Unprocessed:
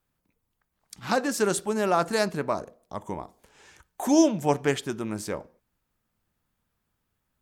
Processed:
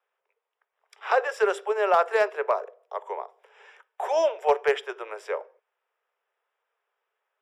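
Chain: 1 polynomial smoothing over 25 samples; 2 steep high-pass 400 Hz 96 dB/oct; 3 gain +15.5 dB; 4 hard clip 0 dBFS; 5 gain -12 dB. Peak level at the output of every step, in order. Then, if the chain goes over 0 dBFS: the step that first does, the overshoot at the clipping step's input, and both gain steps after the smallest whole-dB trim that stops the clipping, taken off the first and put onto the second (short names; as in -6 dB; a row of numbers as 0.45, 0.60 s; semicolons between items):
-9.0, -12.0, +3.5, 0.0, -12.0 dBFS; step 3, 3.5 dB; step 3 +11.5 dB, step 5 -8 dB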